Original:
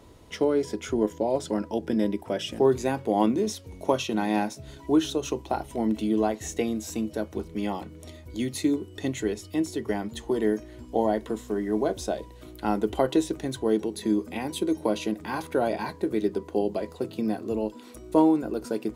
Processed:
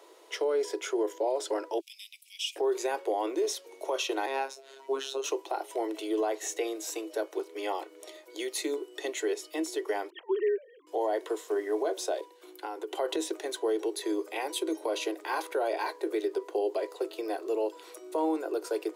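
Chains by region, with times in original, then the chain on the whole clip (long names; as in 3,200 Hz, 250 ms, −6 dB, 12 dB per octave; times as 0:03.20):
0:01.80–0:02.56: Butterworth high-pass 2,300 Hz 96 dB per octave + high-shelf EQ 9,600 Hz +4 dB
0:04.26–0:05.24: phases set to zero 135 Hz + high-shelf EQ 7,800 Hz −8.5 dB + double-tracking delay 23 ms −12 dB
0:10.10–0:10.87: three sine waves on the formant tracks + low-shelf EQ 440 Hz −5 dB
0:12.21–0:12.93: downward expander −43 dBFS + notch comb filter 640 Hz + downward compressor, threshold −31 dBFS
whole clip: Butterworth high-pass 340 Hz 72 dB per octave; brickwall limiter −22 dBFS; level +1 dB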